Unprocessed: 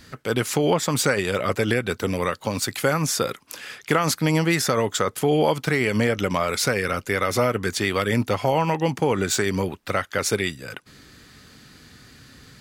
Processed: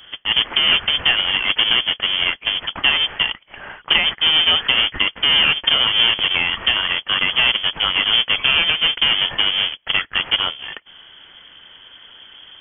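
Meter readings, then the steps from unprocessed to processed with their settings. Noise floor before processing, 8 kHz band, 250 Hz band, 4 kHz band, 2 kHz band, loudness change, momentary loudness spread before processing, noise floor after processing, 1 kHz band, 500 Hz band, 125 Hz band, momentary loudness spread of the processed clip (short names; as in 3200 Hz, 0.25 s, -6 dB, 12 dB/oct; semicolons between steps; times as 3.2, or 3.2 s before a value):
-50 dBFS, under -40 dB, -12.5 dB, +18.5 dB, +8.0 dB, +7.0 dB, 6 LU, -47 dBFS, -1.5 dB, -13.0 dB, -13.5 dB, 6 LU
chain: half-waves squared off; inverted band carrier 3300 Hz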